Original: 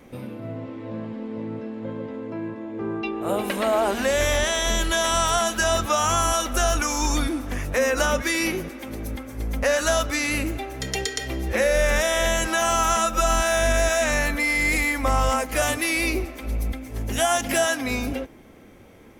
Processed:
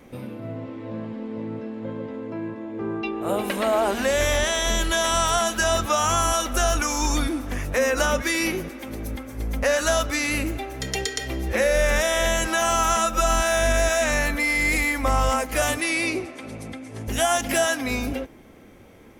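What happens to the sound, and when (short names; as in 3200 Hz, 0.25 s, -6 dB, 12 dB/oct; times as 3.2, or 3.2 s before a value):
15.8–17.08 elliptic band-pass 100–9700 Hz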